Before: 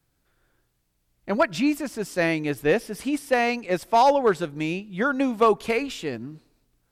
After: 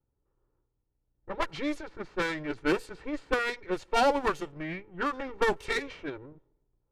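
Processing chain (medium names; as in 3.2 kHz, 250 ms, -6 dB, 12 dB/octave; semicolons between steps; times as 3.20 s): comb filter that takes the minimum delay 2.2 ms; level-controlled noise filter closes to 860 Hz, open at -20 dBFS; formant shift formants -3 st; endings held to a fixed fall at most 320 dB/s; trim -4.5 dB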